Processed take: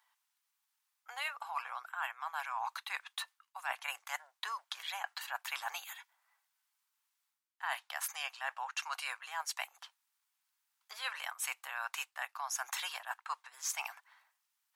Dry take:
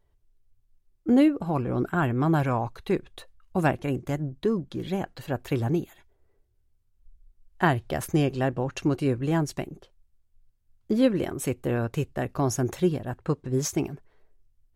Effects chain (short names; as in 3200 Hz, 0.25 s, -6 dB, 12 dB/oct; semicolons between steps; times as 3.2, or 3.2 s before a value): steep high-pass 860 Hz 48 dB/oct; reverse; compressor 10:1, threshold -43 dBFS, peak gain reduction 22.5 dB; reverse; gain +8 dB